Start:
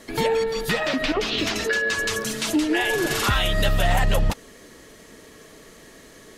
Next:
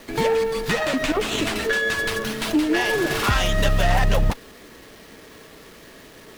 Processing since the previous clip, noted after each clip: word length cut 8-bit, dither none; sliding maximum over 5 samples; trim +1.5 dB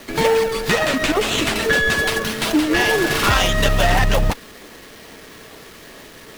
bass shelf 500 Hz -7.5 dB; in parallel at -7.5 dB: decimation with a swept rate 35×, swing 100% 2.3 Hz; on the sum: trim +5.5 dB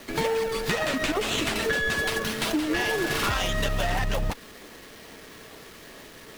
compression, threshold -17 dBFS, peak gain reduction 6 dB; trim -5 dB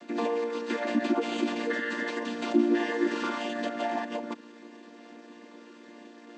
vocoder on a held chord major triad, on A#3; trim -1 dB

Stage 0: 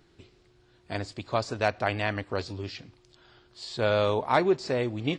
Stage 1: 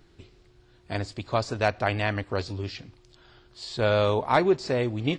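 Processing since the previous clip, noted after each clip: bass shelf 66 Hz +10 dB; trim +1.5 dB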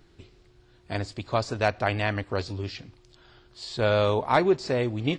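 no audible change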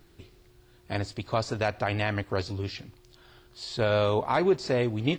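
peak limiter -14 dBFS, peak gain reduction 5 dB; word length cut 12-bit, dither triangular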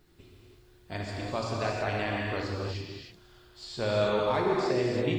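gated-style reverb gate 360 ms flat, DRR -3 dB; trim -6.5 dB

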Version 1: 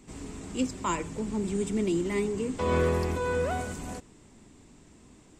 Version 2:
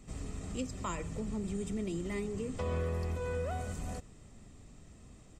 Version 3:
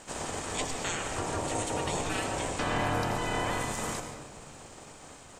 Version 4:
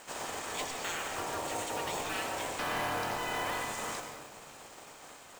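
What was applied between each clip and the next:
bass shelf 180 Hz +7 dB; comb 1.6 ms, depth 42%; compression 2.5:1, threshold -31 dBFS, peak gain reduction 9.5 dB; trim -4 dB
spectral peaks clipped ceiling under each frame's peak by 21 dB; ring modulator 520 Hz; on a send at -5.5 dB: reverberation RT60 1.3 s, pre-delay 81 ms; on the sum: trim +6.5 dB
overdrive pedal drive 15 dB, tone 4.8 kHz, clips at -15 dBFS; companded quantiser 4-bit; trim -9 dB

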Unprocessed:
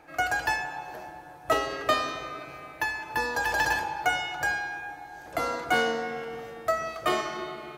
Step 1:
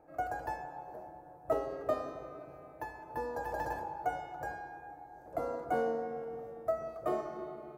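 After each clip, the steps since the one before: FFT filter 340 Hz 0 dB, 570 Hz +4 dB, 3.1 kHz -23 dB, 15 kHz -9 dB; trim -6 dB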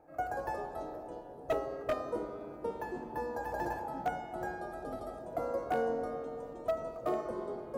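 ever faster or slower copies 123 ms, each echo -5 st, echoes 3, each echo -6 dB; wavefolder -23.5 dBFS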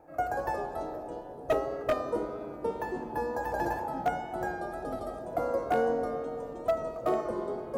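wow and flutter 24 cents; trim +5 dB

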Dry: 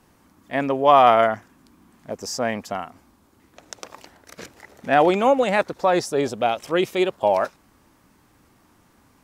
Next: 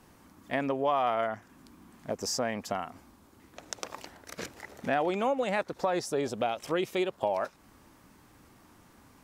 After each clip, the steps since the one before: compression 3:1, threshold -29 dBFS, peak gain reduction 14.5 dB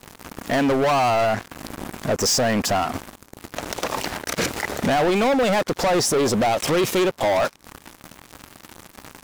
waveshaping leveller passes 5; peak limiter -25 dBFS, peak gain reduction 11 dB; trim +9 dB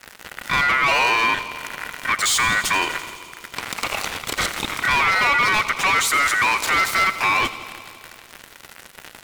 thinning echo 84 ms, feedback 80%, high-pass 160 Hz, level -14.5 dB; ring modulator 1.7 kHz; trim +3.5 dB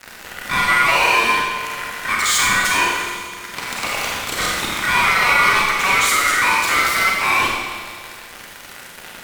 in parallel at -5.5 dB: wavefolder -26 dBFS; on the sum: Schroeder reverb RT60 0.89 s, combs from 31 ms, DRR -1.5 dB; trim -1 dB

